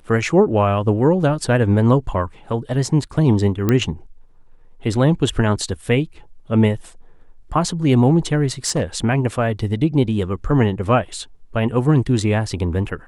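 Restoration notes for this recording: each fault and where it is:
3.69 s: pop -5 dBFS
8.66–8.83 s: clipped -13.5 dBFS

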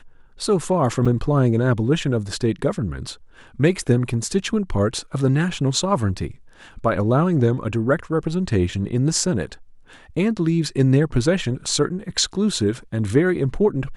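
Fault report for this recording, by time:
1.05 s: dropout 5 ms

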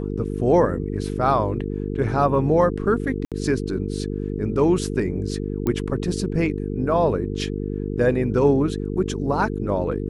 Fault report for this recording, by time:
buzz 50 Hz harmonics 9 -27 dBFS
3.25–3.32 s: dropout 67 ms
5.67 s: pop -12 dBFS

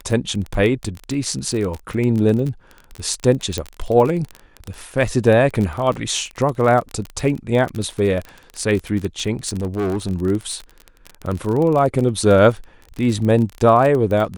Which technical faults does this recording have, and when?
crackle 31 per s -22 dBFS
3.58 s: pop -8 dBFS
5.93 s: dropout 4 ms
9.47–10.11 s: clipped -17.5 dBFS

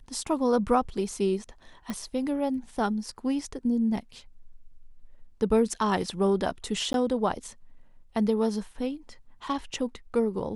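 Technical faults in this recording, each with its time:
1.90 s: pop
6.93–6.94 s: dropout 12 ms

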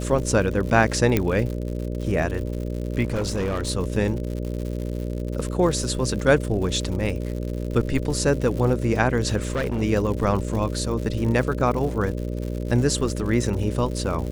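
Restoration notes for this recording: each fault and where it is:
buzz 60 Hz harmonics 10 -28 dBFS
crackle 130 per s -30 dBFS
1.17 s: pop -6 dBFS
3.05–3.70 s: clipped -21 dBFS
9.36–9.82 s: clipped -20 dBFS

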